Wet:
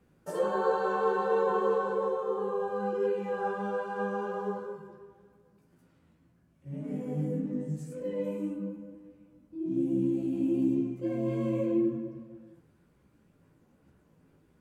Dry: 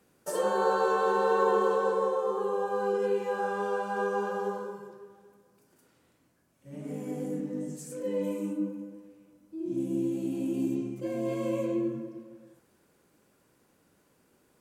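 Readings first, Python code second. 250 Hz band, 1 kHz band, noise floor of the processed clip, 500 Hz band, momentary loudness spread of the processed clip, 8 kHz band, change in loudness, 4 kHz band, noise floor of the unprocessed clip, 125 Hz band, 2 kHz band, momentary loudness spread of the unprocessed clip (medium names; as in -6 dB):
+1.5 dB, -3.0 dB, -66 dBFS, -1.5 dB, 13 LU, under -10 dB, -1.0 dB, no reading, -68 dBFS, +4.5 dB, -3.5 dB, 14 LU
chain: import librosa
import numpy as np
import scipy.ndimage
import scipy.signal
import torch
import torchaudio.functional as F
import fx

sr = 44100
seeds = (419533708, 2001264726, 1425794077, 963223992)

y = fx.bass_treble(x, sr, bass_db=11, treble_db=-9)
y = fx.chorus_voices(y, sr, voices=6, hz=0.6, base_ms=15, depth_ms=3.6, mix_pct=40)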